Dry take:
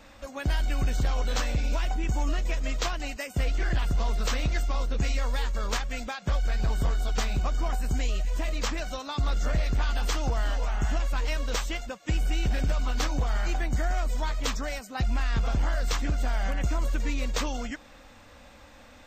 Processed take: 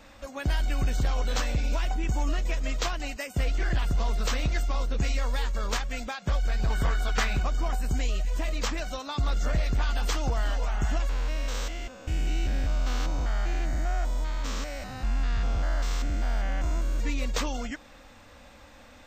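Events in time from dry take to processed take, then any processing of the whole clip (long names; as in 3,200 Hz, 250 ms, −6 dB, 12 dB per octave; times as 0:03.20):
0:06.70–0:07.43: parametric band 1,700 Hz +9 dB 1.4 octaves
0:11.09–0:17.00: spectrum averaged block by block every 200 ms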